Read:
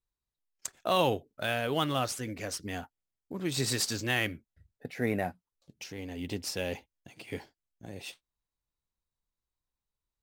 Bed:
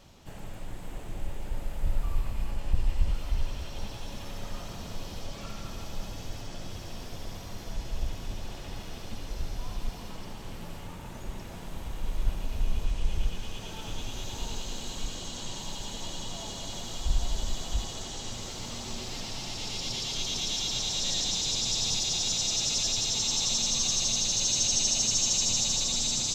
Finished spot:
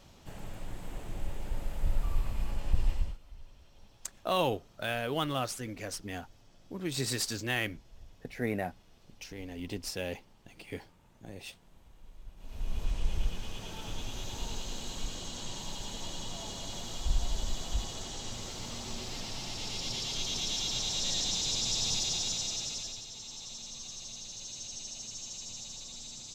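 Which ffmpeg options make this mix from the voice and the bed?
ffmpeg -i stem1.wav -i stem2.wav -filter_complex "[0:a]adelay=3400,volume=-2.5dB[link_01];[1:a]volume=17dB,afade=type=out:start_time=2.89:duration=0.29:silence=0.105925,afade=type=in:start_time=12.36:duration=0.55:silence=0.11885,afade=type=out:start_time=22.02:duration=1.03:silence=0.199526[link_02];[link_01][link_02]amix=inputs=2:normalize=0" out.wav

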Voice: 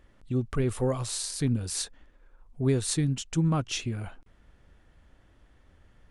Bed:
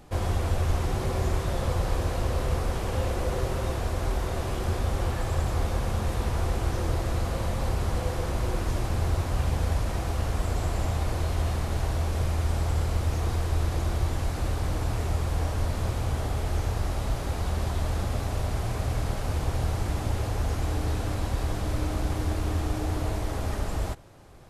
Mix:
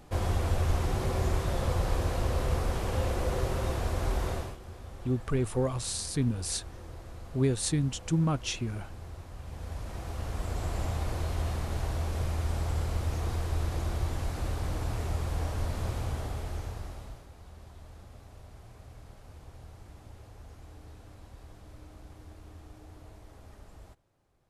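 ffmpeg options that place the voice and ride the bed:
ffmpeg -i stem1.wav -i stem2.wav -filter_complex "[0:a]adelay=4750,volume=-1.5dB[link_01];[1:a]volume=11dB,afade=type=out:start_time=4.3:duration=0.27:silence=0.16788,afade=type=in:start_time=9.42:duration=1.36:silence=0.223872,afade=type=out:start_time=15.98:duration=1.3:silence=0.141254[link_02];[link_01][link_02]amix=inputs=2:normalize=0" out.wav

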